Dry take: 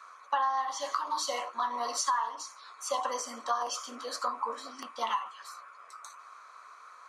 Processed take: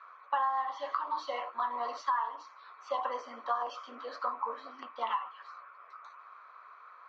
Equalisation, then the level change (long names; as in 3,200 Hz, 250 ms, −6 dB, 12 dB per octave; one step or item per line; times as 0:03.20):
Bessel high-pass filter 340 Hz, order 2
low-pass filter 3,600 Hz 12 dB per octave
high-frequency loss of the air 220 metres
0.0 dB